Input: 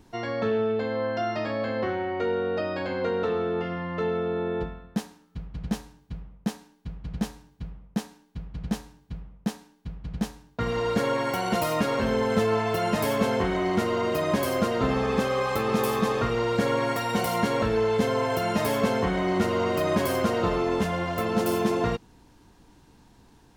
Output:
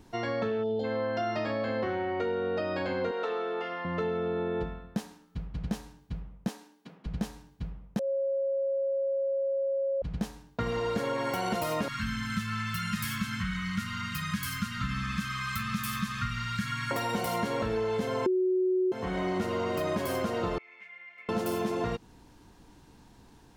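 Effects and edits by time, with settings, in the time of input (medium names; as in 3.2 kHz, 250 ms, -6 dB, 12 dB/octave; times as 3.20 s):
0.63–0.84 s: time-frequency box 930–2900 Hz -22 dB
3.11–3.85 s: high-pass 520 Hz
6.48–7.06 s: high-pass 230 Hz 24 dB/octave
7.99–10.02 s: bleep 546 Hz -24 dBFS
11.88–16.91 s: elliptic band-stop 200–1300 Hz
18.26–18.92 s: bleep 370 Hz -7.5 dBFS
20.58–21.29 s: band-pass filter 2.2 kHz, Q 19
whole clip: compression, threshold -27 dBFS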